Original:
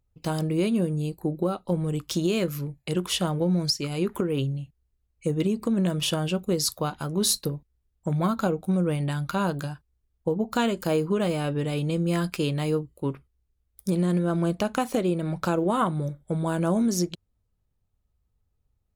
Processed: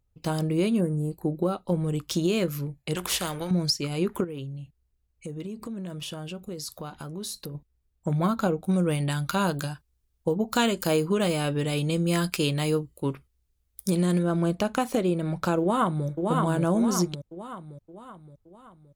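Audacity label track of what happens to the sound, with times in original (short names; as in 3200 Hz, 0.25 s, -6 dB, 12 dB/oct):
0.810000	1.110000	spectral gain 2200–6800 Hz -21 dB
2.950000	3.510000	spectral compressor 2:1
4.240000	7.550000	compressor 3:1, threshold -36 dBFS
8.690000	14.230000	high shelf 2400 Hz +7.5 dB
15.600000	16.070000	echo throw 0.57 s, feedback 50%, level -3 dB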